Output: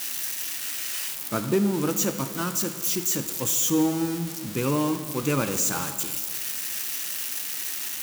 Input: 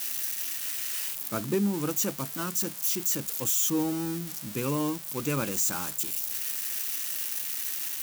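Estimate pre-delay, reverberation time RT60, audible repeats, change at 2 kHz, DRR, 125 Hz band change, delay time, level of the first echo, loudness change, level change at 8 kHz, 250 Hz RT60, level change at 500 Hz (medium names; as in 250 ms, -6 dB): 16 ms, 1.8 s, no echo, +5.0 dB, 8.5 dB, +4.5 dB, no echo, no echo, +2.5 dB, +3.0 dB, 2.0 s, +5.0 dB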